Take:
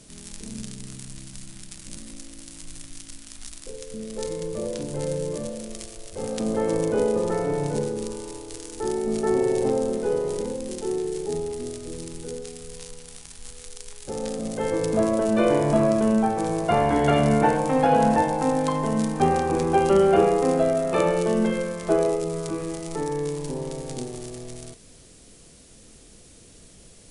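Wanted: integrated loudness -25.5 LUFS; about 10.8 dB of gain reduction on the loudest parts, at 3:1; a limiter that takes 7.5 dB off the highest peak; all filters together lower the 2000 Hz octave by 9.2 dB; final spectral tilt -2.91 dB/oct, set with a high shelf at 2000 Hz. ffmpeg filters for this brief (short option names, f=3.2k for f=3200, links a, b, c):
-af "highshelf=f=2k:g=-9,equalizer=f=2k:t=o:g=-7,acompressor=threshold=-30dB:ratio=3,volume=9.5dB,alimiter=limit=-15.5dB:level=0:latency=1"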